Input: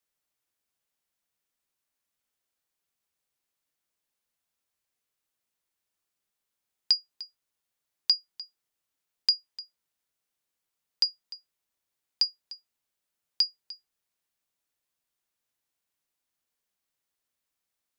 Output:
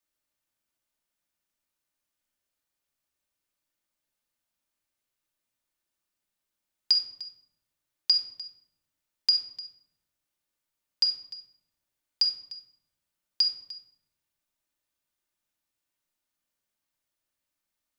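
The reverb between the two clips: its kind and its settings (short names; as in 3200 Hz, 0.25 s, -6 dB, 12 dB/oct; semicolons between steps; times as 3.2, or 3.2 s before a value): shoebox room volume 2000 m³, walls furnished, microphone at 2.6 m; gain -2.5 dB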